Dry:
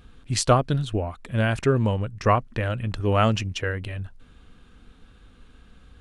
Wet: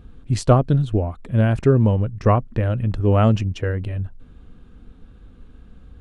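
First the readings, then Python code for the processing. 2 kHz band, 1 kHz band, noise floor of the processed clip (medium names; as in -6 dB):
-4.0 dB, -0.5 dB, -47 dBFS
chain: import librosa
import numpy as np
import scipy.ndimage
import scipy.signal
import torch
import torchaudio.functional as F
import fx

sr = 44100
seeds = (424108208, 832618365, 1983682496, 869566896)

y = fx.tilt_shelf(x, sr, db=7.0, hz=900.0)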